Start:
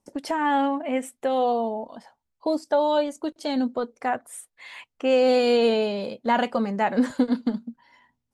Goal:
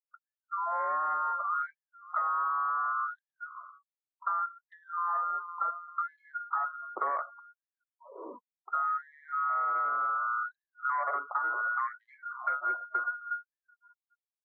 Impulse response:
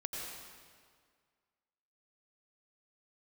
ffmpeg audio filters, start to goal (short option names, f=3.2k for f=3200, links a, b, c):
-filter_complex "[0:a]aecho=1:1:332|664:0.0708|0.0212,lowpass=f=2.3k:t=q:w=0.5098,lowpass=f=2.3k:t=q:w=0.6013,lowpass=f=2.3k:t=q:w=0.9,lowpass=f=2.3k:t=q:w=2.563,afreqshift=-2700,agate=range=-33dB:threshold=-45dB:ratio=3:detection=peak,acrossover=split=410[a][b];[b]dynaudnorm=f=110:g=9:m=11.5dB[c];[a][c]amix=inputs=2:normalize=0,adynamicequalizer=threshold=0.0447:dfrequency=1100:dqfactor=1.2:tfrequency=1100:tqfactor=1.2:attack=5:release=100:ratio=0.375:range=2.5:mode=boostabove:tftype=bell,aresample=8000,asoftclip=type=tanh:threshold=-9.5dB,aresample=44100,afftfilt=real='re*gte(hypot(re,im),0.0178)':imag='im*gte(hypot(re,im),0.0178)':win_size=1024:overlap=0.75,asetrate=25442,aresample=44100,acompressor=threshold=-19dB:ratio=16,afftfilt=real='re*gte(b*sr/1024,200*pow(1700/200,0.5+0.5*sin(2*PI*0.68*pts/sr)))':imag='im*gte(b*sr/1024,200*pow(1700/200,0.5+0.5*sin(2*PI*0.68*pts/sr)))':win_size=1024:overlap=0.75,volume=-8.5dB"